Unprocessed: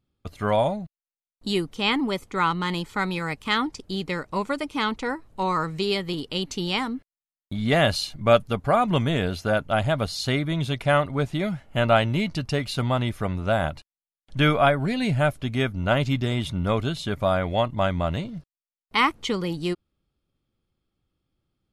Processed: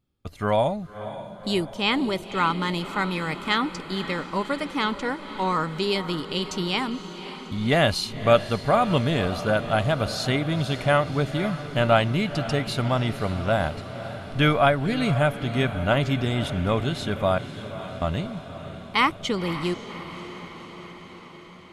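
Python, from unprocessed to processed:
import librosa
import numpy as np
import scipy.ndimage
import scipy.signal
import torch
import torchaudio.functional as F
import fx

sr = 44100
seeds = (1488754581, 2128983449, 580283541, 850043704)

y = fx.tone_stack(x, sr, knobs='6-0-2', at=(17.38, 18.02))
y = fx.echo_diffused(y, sr, ms=542, feedback_pct=67, wet_db=-12.5)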